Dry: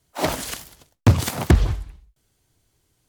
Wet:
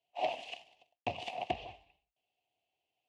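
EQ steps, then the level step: double band-pass 1400 Hz, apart 1.9 oct; air absorption 69 m; -1.5 dB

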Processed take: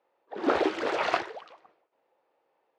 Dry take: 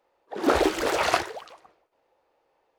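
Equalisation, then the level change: BPF 160–3700 Hz; -3.5 dB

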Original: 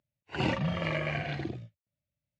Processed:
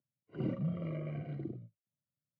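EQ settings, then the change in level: running mean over 51 samples; HPF 120 Hz 24 dB/oct; -2.5 dB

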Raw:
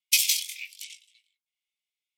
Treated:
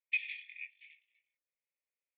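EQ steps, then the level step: vocal tract filter e; +9.0 dB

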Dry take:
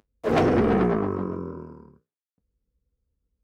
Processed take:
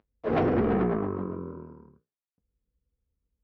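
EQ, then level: air absorption 270 m; -3.5 dB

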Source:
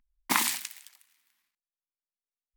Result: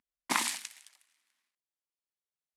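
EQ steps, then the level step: HPF 170 Hz 12 dB/oct; LPF 11000 Hz 24 dB/oct; bell 570 Hz +4 dB 0.49 oct; -3.5 dB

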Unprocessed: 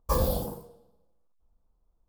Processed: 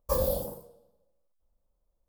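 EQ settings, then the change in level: bell 560 Hz +14 dB 0.22 oct; high shelf 7300 Hz +8.5 dB; -6.0 dB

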